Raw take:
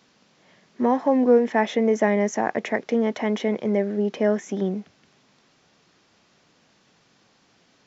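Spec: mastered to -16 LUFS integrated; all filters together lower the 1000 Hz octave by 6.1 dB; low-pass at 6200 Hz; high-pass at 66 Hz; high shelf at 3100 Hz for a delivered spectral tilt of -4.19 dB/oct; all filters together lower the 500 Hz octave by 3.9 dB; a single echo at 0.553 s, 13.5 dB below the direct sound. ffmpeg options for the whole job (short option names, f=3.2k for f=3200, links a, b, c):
-af "highpass=66,lowpass=6.2k,equalizer=f=500:t=o:g=-3,equalizer=f=1k:t=o:g=-6.5,highshelf=f=3.1k:g=-4,aecho=1:1:553:0.211,volume=9dB"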